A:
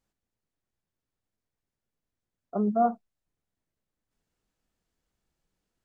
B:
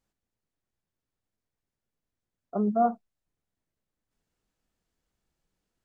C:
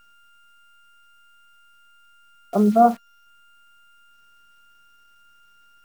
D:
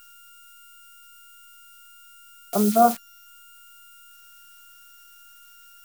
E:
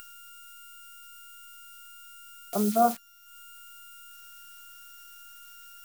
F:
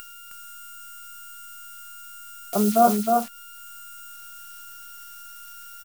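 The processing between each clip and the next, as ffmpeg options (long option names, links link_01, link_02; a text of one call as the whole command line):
ffmpeg -i in.wav -af anull out.wav
ffmpeg -i in.wav -af "aeval=exprs='val(0)+0.00126*sin(2*PI*1400*n/s)':channel_layout=same,acrusher=bits=9:dc=4:mix=0:aa=0.000001,volume=9dB" out.wav
ffmpeg -i in.wav -af "crystalizer=i=7.5:c=0,volume=-4dB" out.wav
ffmpeg -i in.wav -af "acompressor=mode=upward:threshold=-33dB:ratio=2.5,volume=-5.5dB" out.wav
ffmpeg -i in.wav -af "aecho=1:1:313:0.631,volume=5dB" out.wav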